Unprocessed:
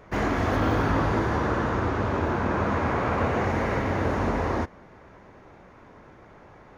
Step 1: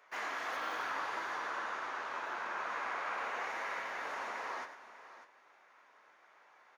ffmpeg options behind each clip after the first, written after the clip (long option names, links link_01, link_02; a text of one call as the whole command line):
ffmpeg -i in.wav -filter_complex "[0:a]highpass=1100,flanger=delay=6.6:depth=6.3:regen=-61:speed=0.73:shape=triangular,asplit=2[link_01][link_02];[link_02]aecho=0:1:100|597:0.282|0.2[link_03];[link_01][link_03]amix=inputs=2:normalize=0,volume=-2.5dB" out.wav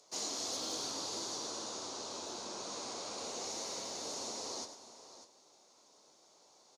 ffmpeg -i in.wav -filter_complex "[0:a]firequalizer=gain_entry='entry(220,0);entry(1700,-29);entry(4200,6);entry(7500,11);entry(16000,-14)':delay=0.05:min_phase=1,acrossover=split=560|1400[link_01][link_02][link_03];[link_02]alimiter=level_in=30.5dB:limit=-24dB:level=0:latency=1,volume=-30.5dB[link_04];[link_01][link_04][link_03]amix=inputs=3:normalize=0,volume=9dB" out.wav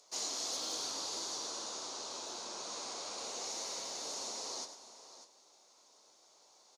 ffmpeg -i in.wav -af "lowshelf=frequency=390:gain=-10,volume=1dB" out.wav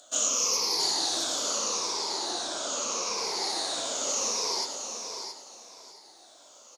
ffmpeg -i in.wav -af "afftfilt=real='re*pow(10,17/40*sin(2*PI*(0.83*log(max(b,1)*sr/1024/100)/log(2)-(-0.78)*(pts-256)/sr)))':imag='im*pow(10,17/40*sin(2*PI*(0.83*log(max(b,1)*sr/1024/100)/log(2)-(-0.78)*(pts-256)/sr)))':win_size=1024:overlap=0.75,highpass=94,aecho=1:1:669|1338|2007:0.398|0.0677|0.0115,volume=7.5dB" out.wav